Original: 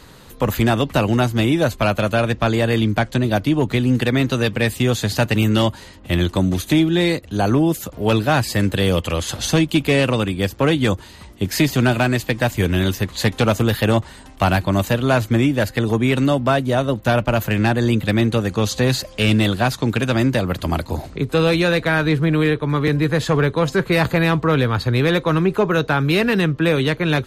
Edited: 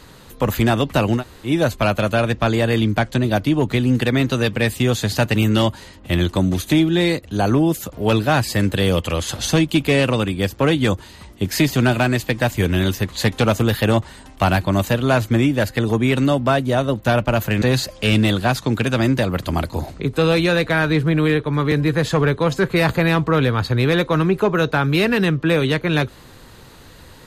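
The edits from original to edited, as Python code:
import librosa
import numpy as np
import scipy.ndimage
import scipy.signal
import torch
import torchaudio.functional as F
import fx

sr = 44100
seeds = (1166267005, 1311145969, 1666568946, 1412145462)

y = fx.edit(x, sr, fx.room_tone_fill(start_s=1.19, length_s=0.29, crossfade_s=0.1),
    fx.cut(start_s=17.62, length_s=1.16), tone=tone)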